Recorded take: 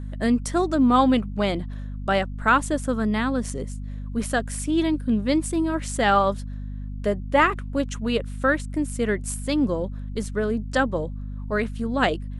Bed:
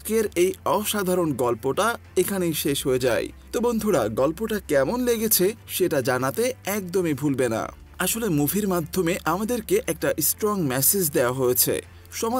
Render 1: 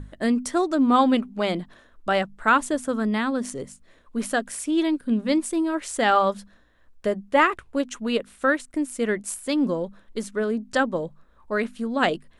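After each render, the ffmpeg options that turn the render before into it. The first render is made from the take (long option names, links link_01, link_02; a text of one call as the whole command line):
ffmpeg -i in.wav -af "bandreject=frequency=50:width_type=h:width=6,bandreject=frequency=100:width_type=h:width=6,bandreject=frequency=150:width_type=h:width=6,bandreject=frequency=200:width_type=h:width=6,bandreject=frequency=250:width_type=h:width=6" out.wav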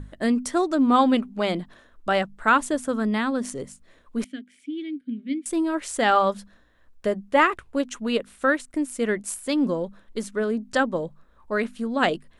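ffmpeg -i in.wav -filter_complex "[0:a]asettb=1/sr,asplit=3[link_01][link_02][link_03];[link_01]atrim=end=4.244[link_04];[link_02]atrim=start=4.24:end=5.46,asetpts=PTS-STARTPTS,afade=type=in:duration=0.004:curve=qsin,afade=type=out:start_time=1.216:duration=0.004:curve=qsin,asplit=3[link_05][link_06][link_07];[link_05]bandpass=frequency=270:width_type=q:width=8,volume=0dB[link_08];[link_06]bandpass=frequency=2290:width_type=q:width=8,volume=-6dB[link_09];[link_07]bandpass=frequency=3010:width_type=q:width=8,volume=-9dB[link_10];[link_08][link_09][link_10]amix=inputs=3:normalize=0[link_11];[link_03]atrim=start=5.456[link_12];[link_04][link_11]acrossfade=duration=0.004:curve1=hsin:curve2=qsin[link_13];[link_13][link_12]acrossfade=duration=0.004:curve1=qsin:curve2=hsin" out.wav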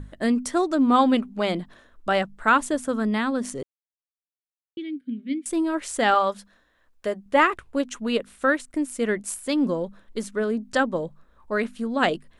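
ffmpeg -i in.wav -filter_complex "[0:a]asettb=1/sr,asplit=3[link_01][link_02][link_03];[link_01]atrim=end=6.144[link_04];[link_02]atrim=start=6.14:end=7.26,asetpts=PTS-STARTPTS,afade=type=in:duration=0.004:curve=qsin,afade=type=out:start_time=1.116:duration=0.004:curve=qsin,lowshelf=frequency=300:gain=-9.5[link_05];[link_03]atrim=start=7.256[link_06];[link_04][link_05]acrossfade=duration=0.004:curve1=hsin:curve2=qsin[link_07];[link_07][link_06]acrossfade=duration=0.004:curve1=qsin:curve2=hsin,asplit=3[link_08][link_09][link_10];[link_08]atrim=end=3.63,asetpts=PTS-STARTPTS,afade=type=out:start_time=3.626:duration=0.004:curve=hsin[link_11];[link_09]atrim=start=3.63:end=4.77,asetpts=PTS-STARTPTS,volume=0[link_12];[link_10]atrim=start=4.77,asetpts=PTS-STARTPTS,afade=type=in:duration=0.004:curve=hsin[link_13];[link_11][link_12][link_13]concat=n=3:v=0:a=1" out.wav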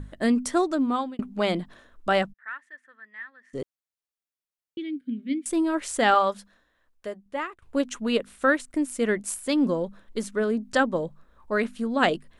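ffmpeg -i in.wav -filter_complex "[0:a]asplit=3[link_01][link_02][link_03];[link_01]afade=type=out:start_time=2.32:duration=0.02[link_04];[link_02]bandpass=frequency=1800:width_type=q:width=17,afade=type=in:start_time=2.32:duration=0.02,afade=type=out:start_time=3.53:duration=0.02[link_05];[link_03]afade=type=in:start_time=3.53:duration=0.02[link_06];[link_04][link_05][link_06]amix=inputs=3:normalize=0,asplit=3[link_07][link_08][link_09];[link_07]atrim=end=1.19,asetpts=PTS-STARTPTS,afade=type=out:start_time=0.58:duration=0.61[link_10];[link_08]atrim=start=1.19:end=7.62,asetpts=PTS-STARTPTS,afade=type=in:duration=0.004:curve=hsin,afade=type=out:start_time=4.99:duration=1.44:silence=0.0891251[link_11];[link_09]atrim=start=7.62,asetpts=PTS-STARTPTS,afade=type=in:duration=0.004:curve=hsin:silence=0.0891251[link_12];[link_10][link_11][link_12]concat=n=3:v=0:a=1" out.wav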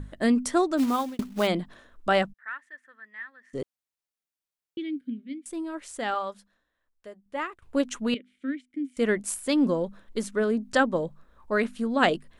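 ffmpeg -i in.wav -filter_complex "[0:a]asplit=3[link_01][link_02][link_03];[link_01]afade=type=out:start_time=0.77:duration=0.02[link_04];[link_02]acrusher=bits=4:mode=log:mix=0:aa=0.000001,afade=type=in:start_time=0.77:duration=0.02,afade=type=out:start_time=1.46:duration=0.02[link_05];[link_03]afade=type=in:start_time=1.46:duration=0.02[link_06];[link_04][link_05][link_06]amix=inputs=3:normalize=0,asettb=1/sr,asplit=3[link_07][link_08][link_09];[link_07]atrim=end=8.144[link_10];[link_08]atrim=start=8.14:end=8.97,asetpts=PTS-STARTPTS,afade=type=in:duration=0.004:curve=qsin,afade=type=out:start_time=0.826:duration=0.004:curve=qsin,asplit=3[link_11][link_12][link_13];[link_11]bandpass=frequency=270:width_type=q:width=8,volume=0dB[link_14];[link_12]bandpass=frequency=2290:width_type=q:width=8,volume=-6dB[link_15];[link_13]bandpass=frequency=3010:width_type=q:width=8,volume=-9dB[link_16];[link_14][link_15][link_16]amix=inputs=3:normalize=0[link_17];[link_09]atrim=start=8.966[link_18];[link_10][link_17]acrossfade=duration=0.004:curve1=hsin:curve2=qsin[link_19];[link_19][link_18]acrossfade=duration=0.004:curve1=qsin:curve2=hsin,asplit=3[link_20][link_21][link_22];[link_20]atrim=end=5.37,asetpts=PTS-STARTPTS,afade=type=out:start_time=5.04:duration=0.33:curve=qua:silence=0.334965[link_23];[link_21]atrim=start=5.37:end=7.09,asetpts=PTS-STARTPTS,volume=-9.5dB[link_24];[link_22]atrim=start=7.09,asetpts=PTS-STARTPTS,afade=type=in:duration=0.33:curve=qua:silence=0.334965[link_25];[link_23][link_24][link_25]concat=n=3:v=0:a=1" out.wav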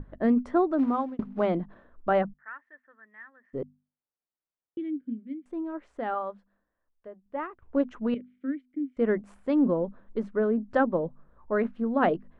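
ffmpeg -i in.wav -af "lowpass=1200,bandreject=frequency=50:width_type=h:width=6,bandreject=frequency=100:width_type=h:width=6,bandreject=frequency=150:width_type=h:width=6,bandreject=frequency=200:width_type=h:width=6,bandreject=frequency=250:width_type=h:width=6" out.wav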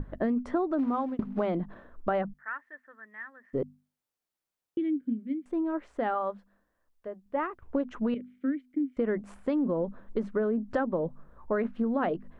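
ffmpeg -i in.wav -filter_complex "[0:a]asplit=2[link_01][link_02];[link_02]alimiter=limit=-22.5dB:level=0:latency=1,volume=-2dB[link_03];[link_01][link_03]amix=inputs=2:normalize=0,acompressor=threshold=-25dB:ratio=6" out.wav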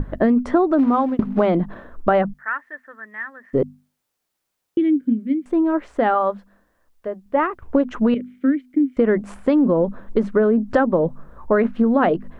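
ffmpeg -i in.wav -af "volume=11.5dB" out.wav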